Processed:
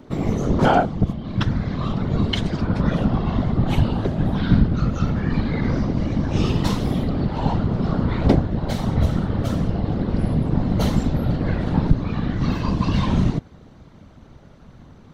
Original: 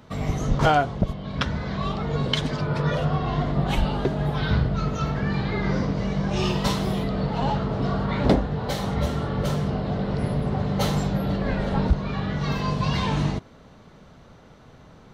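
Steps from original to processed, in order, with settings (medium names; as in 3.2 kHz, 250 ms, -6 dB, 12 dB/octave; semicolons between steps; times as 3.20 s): peaking EQ 270 Hz +10.5 dB 2.4 oct, from 0.87 s 80 Hz; whisper effect; trim -2 dB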